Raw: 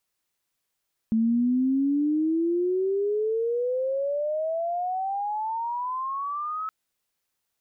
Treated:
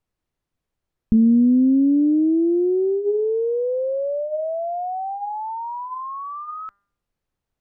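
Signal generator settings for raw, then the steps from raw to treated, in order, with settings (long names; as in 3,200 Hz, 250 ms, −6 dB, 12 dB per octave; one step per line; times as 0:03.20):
glide logarithmic 220 Hz → 1,300 Hz −19 dBFS → −28 dBFS 5.57 s
spectral tilt −4 dB per octave
hum removal 200.2 Hz, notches 10
highs frequency-modulated by the lows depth 0.11 ms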